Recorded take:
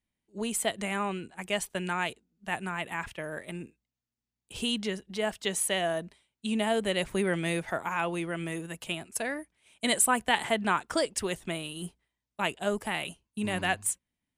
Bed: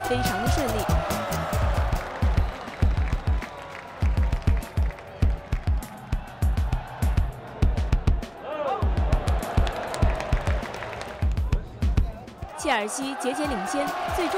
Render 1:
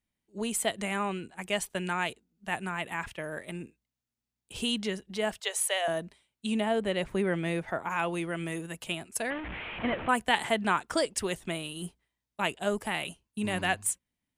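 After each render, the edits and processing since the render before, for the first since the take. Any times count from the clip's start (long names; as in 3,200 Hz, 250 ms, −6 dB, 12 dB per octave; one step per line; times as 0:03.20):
0:05.40–0:05.88: Butterworth high-pass 450 Hz 48 dB per octave
0:06.60–0:07.90: high-shelf EQ 3,400 Hz −10.5 dB
0:09.30–0:10.09: linear delta modulator 16 kbit/s, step −32 dBFS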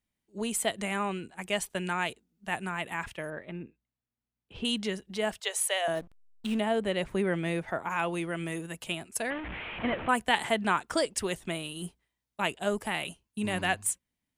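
0:03.30–0:04.65: high-frequency loss of the air 340 metres
0:05.95–0:06.59: slack as between gear wheels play −35 dBFS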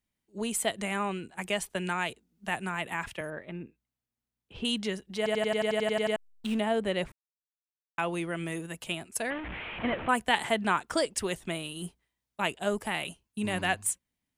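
0:01.37–0:03.21: multiband upward and downward compressor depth 40%
0:05.17: stutter in place 0.09 s, 11 plays
0:07.12–0:07.98: silence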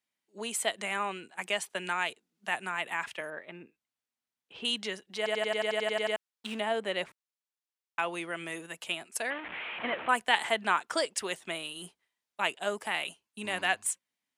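meter weighting curve A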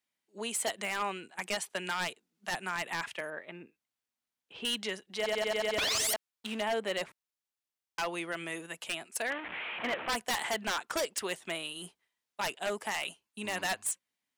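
0:05.78–0:06.14: sound drawn into the spectrogram rise 430–2,000 Hz −15 dBFS
wave folding −25 dBFS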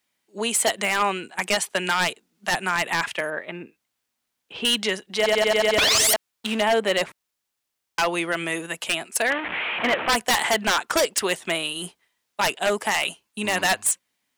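level +11.5 dB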